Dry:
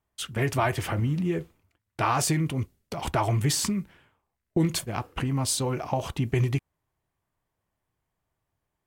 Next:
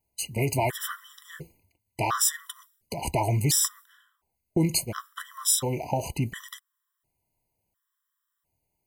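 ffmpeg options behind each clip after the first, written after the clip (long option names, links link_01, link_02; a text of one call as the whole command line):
ffmpeg -i in.wav -af "aemphasis=mode=production:type=50kf,afftfilt=real='re*gt(sin(2*PI*0.71*pts/sr)*(1-2*mod(floor(b*sr/1024/1000),2)),0)':imag='im*gt(sin(2*PI*0.71*pts/sr)*(1-2*mod(floor(b*sr/1024/1000),2)),0)':win_size=1024:overlap=0.75" out.wav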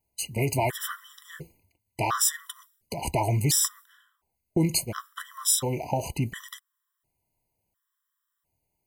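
ffmpeg -i in.wav -af anull out.wav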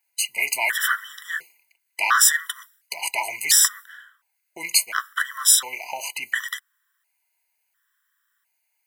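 ffmpeg -i in.wav -af "highpass=frequency=1600:width_type=q:width=3.6,volume=7.5dB" out.wav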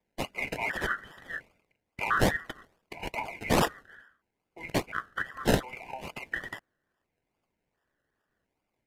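ffmpeg -i in.wav -filter_complex "[0:a]acrossover=split=140|890|2900[link_01][link_02][link_03][link_04];[link_04]acrusher=samples=30:mix=1:aa=0.000001:lfo=1:lforange=18:lforate=2.4[link_05];[link_01][link_02][link_03][link_05]amix=inputs=4:normalize=0,aresample=32000,aresample=44100,volume=-8dB" out.wav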